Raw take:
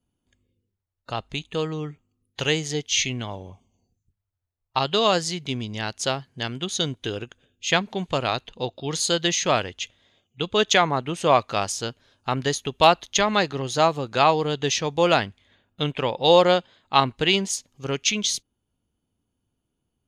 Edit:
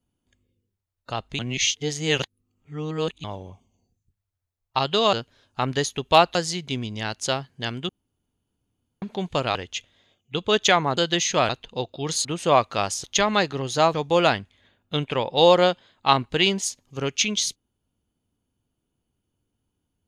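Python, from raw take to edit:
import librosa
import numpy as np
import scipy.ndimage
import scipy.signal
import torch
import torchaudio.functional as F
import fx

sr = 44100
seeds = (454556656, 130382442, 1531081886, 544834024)

y = fx.edit(x, sr, fx.reverse_span(start_s=1.39, length_s=1.85),
    fx.room_tone_fill(start_s=6.67, length_s=1.13),
    fx.swap(start_s=8.33, length_s=0.76, other_s=9.61, other_length_s=1.42),
    fx.move(start_s=11.82, length_s=1.22, to_s=5.13),
    fx.cut(start_s=13.94, length_s=0.87), tone=tone)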